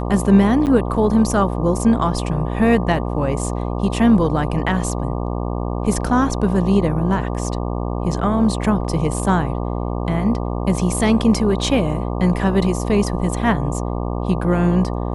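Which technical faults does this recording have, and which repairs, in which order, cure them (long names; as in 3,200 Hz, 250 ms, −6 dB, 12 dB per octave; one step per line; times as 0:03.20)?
mains buzz 60 Hz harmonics 20 −23 dBFS
0:00.66–0:00.67: drop-out 8.6 ms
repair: hum removal 60 Hz, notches 20
repair the gap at 0:00.66, 8.6 ms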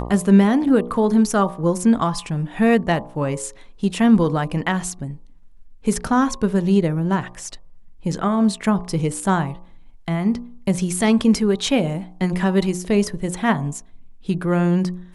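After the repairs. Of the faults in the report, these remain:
none of them is left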